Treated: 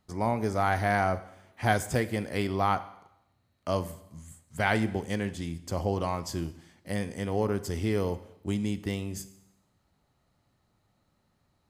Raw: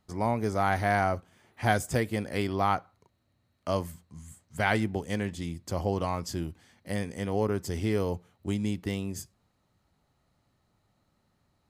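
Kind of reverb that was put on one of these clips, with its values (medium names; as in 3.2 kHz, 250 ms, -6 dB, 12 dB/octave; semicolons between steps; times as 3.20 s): Schroeder reverb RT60 0.83 s, combs from 32 ms, DRR 14 dB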